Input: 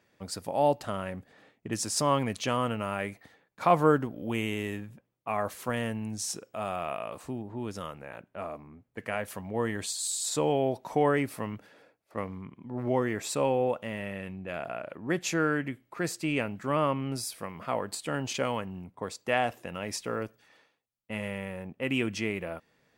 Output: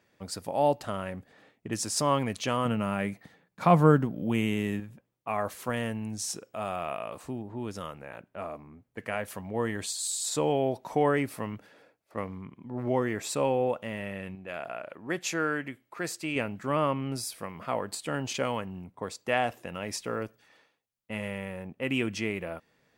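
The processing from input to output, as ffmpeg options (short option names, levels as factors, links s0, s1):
-filter_complex "[0:a]asettb=1/sr,asplit=3[s0][s1][s2];[s0]atrim=end=2.654[s3];[s1]atrim=start=2.65:end=4.8,asetpts=PTS-STARTPTS,afade=t=in:d=0.004:c=qsin,afade=t=out:st=2.146:d=0.004:c=qsin,equalizer=f=170:w=1.5:g=10[s4];[s2]atrim=start=4.796[s5];[s3][s4]acrossfade=d=0.004:c1=hsin:c2=qsin[s6];[s6][s5]acrossfade=d=0.004:c1=qsin:c2=hsin,asettb=1/sr,asplit=3[s7][s8][s9];[s7]atrim=end=14.354[s10];[s8]atrim=start=14.35:end=16.36,asetpts=PTS-STARTPTS,afade=t=in:d=0.004:c=qsin,afade=t=out:st=2.006:d=0.004:c=qsin,lowshelf=f=300:g=-8[s11];[s9]atrim=start=16.356[s12];[s10][s11]acrossfade=d=0.004:c1=hsin:c2=qsin[s13];[s13][s12]acrossfade=d=0.004:c1=qsin:c2=hsin"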